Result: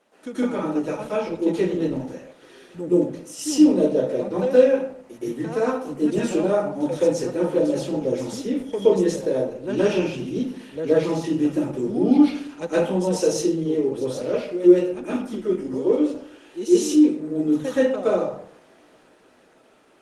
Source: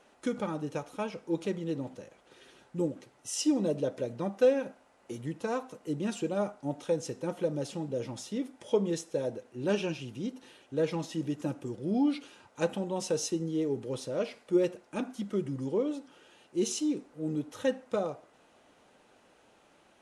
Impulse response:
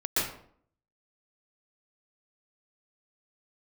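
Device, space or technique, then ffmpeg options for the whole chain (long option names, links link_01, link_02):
far-field microphone of a smart speaker: -filter_complex "[0:a]asplit=3[link_01][link_02][link_03];[link_01]afade=type=out:start_time=15.35:duration=0.02[link_04];[link_02]highpass=210,afade=type=in:start_time=15.35:duration=0.02,afade=type=out:start_time=16.71:duration=0.02[link_05];[link_03]afade=type=in:start_time=16.71:duration=0.02[link_06];[link_04][link_05][link_06]amix=inputs=3:normalize=0[link_07];[1:a]atrim=start_sample=2205[link_08];[link_07][link_08]afir=irnorm=-1:irlink=0,highpass=frequency=150:width=0.5412,highpass=frequency=150:width=1.3066,dynaudnorm=framelen=120:gausssize=21:maxgain=3dB,volume=-1.5dB" -ar 48000 -c:a libopus -b:a 20k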